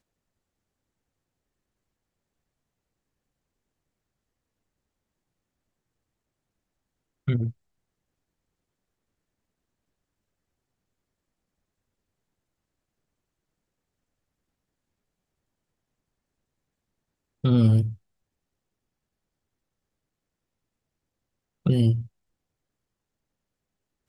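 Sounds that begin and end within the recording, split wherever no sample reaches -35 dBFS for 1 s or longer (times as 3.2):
7.28–7.51
17.44–17.94
21.66–22.03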